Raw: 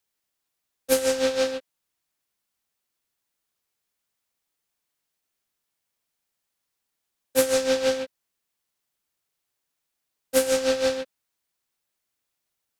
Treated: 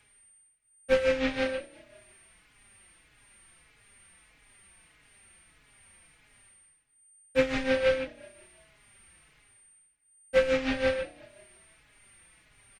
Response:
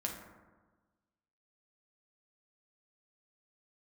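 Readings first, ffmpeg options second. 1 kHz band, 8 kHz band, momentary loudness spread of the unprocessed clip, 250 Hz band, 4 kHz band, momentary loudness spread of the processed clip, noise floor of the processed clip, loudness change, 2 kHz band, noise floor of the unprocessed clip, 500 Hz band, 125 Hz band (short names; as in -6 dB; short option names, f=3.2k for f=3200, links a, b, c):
-3.0 dB, -17.0 dB, 12 LU, -1.5 dB, -7.0 dB, 9 LU, -65 dBFS, -4.0 dB, +1.5 dB, -81 dBFS, -3.5 dB, +5.0 dB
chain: -filter_complex "[0:a]aemphasis=mode=reproduction:type=riaa,acrossover=split=6500[a][b];[b]acompressor=threshold=-54dB:ratio=4:attack=1:release=60[c];[a][c]amix=inputs=2:normalize=0,equalizer=f=2.2k:w=1:g=14.5,bandreject=f=241.8:t=h:w=4,bandreject=f=483.6:t=h:w=4,bandreject=f=725.4:t=h:w=4,areverse,acompressor=mode=upward:threshold=-33dB:ratio=2.5,areverse,aeval=exprs='val(0)+0.00251*sin(2*PI*8800*n/s)':c=same,asplit=5[d][e][f][g][h];[e]adelay=179,afreqshift=32,volume=-22dB[i];[f]adelay=358,afreqshift=64,volume=-27.5dB[j];[g]adelay=537,afreqshift=96,volume=-33dB[k];[h]adelay=716,afreqshift=128,volume=-38.5dB[l];[d][i][j][k][l]amix=inputs=5:normalize=0,asplit=2[m][n];[n]adelay=4.3,afreqshift=-1.6[o];[m][o]amix=inputs=2:normalize=1,volume=-4.5dB"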